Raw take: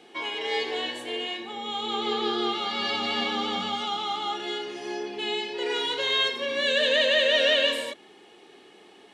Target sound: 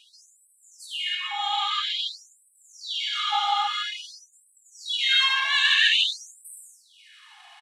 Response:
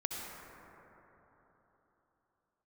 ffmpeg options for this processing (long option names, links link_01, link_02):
-filter_complex "[0:a]atempo=1.2,acontrast=70[link_01];[1:a]atrim=start_sample=2205,afade=type=out:start_time=0.4:duration=0.01,atrim=end_sample=18081,asetrate=52920,aresample=44100[link_02];[link_01][link_02]afir=irnorm=-1:irlink=0,afftfilt=real='re*gte(b*sr/1024,680*pow(7900/680,0.5+0.5*sin(2*PI*0.5*pts/sr)))':imag='im*gte(b*sr/1024,680*pow(7900/680,0.5+0.5*sin(2*PI*0.5*pts/sr)))':win_size=1024:overlap=0.75"